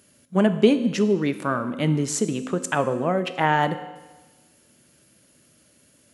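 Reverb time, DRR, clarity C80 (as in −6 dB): 1.2 s, 10.0 dB, 14.0 dB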